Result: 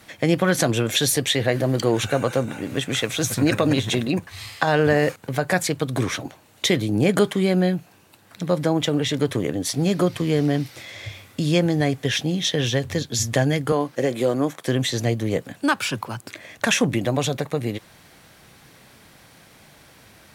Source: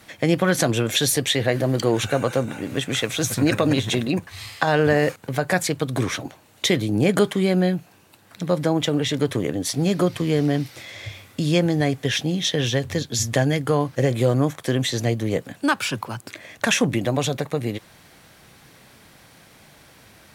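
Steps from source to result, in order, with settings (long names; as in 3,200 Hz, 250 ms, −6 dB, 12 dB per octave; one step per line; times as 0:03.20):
0:13.72–0:14.67: Chebyshev high-pass filter 250 Hz, order 2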